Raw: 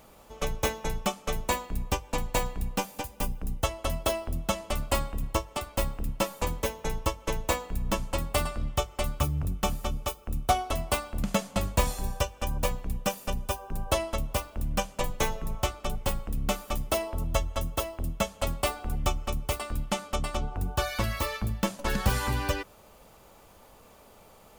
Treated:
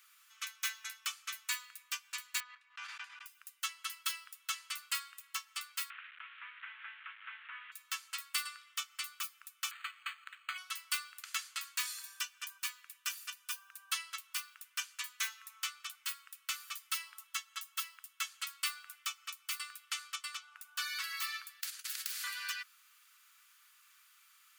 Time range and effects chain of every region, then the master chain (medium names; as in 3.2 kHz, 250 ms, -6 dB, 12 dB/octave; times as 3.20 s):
2.40–3.26 s: gate -40 dBFS, range -15 dB + tape spacing loss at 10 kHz 36 dB + level flattener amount 100%
5.90–7.72 s: one-bit delta coder 16 kbps, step -39 dBFS + Chebyshev band-stop 220–820 Hz, order 4 + three bands compressed up and down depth 100%
9.71–10.58 s: peaking EQ 2 kHz +13.5 dB 2.6 oct + compression, threshold -24 dBFS + decimation joined by straight lines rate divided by 8×
21.61–22.24 s: gate -33 dBFS, range -13 dB + compression, threshold -25 dBFS + spectrum-flattening compressor 10:1
whole clip: steep high-pass 1.3 kHz 48 dB/octave; dynamic bell 4.5 kHz, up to +6 dB, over -58 dBFS, Q 7.3; trim -3.5 dB